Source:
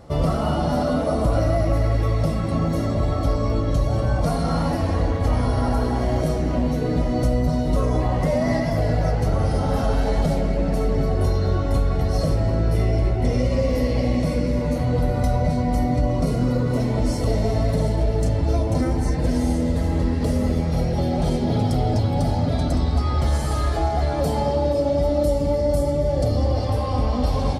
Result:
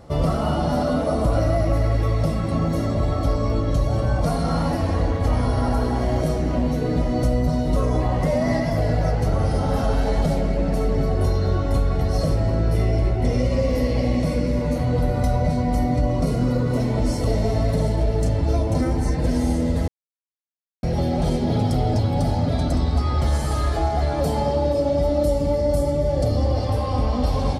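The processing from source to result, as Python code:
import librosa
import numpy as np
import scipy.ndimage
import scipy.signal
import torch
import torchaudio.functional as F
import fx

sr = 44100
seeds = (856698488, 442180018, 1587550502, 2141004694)

y = fx.edit(x, sr, fx.silence(start_s=19.88, length_s=0.95), tone=tone)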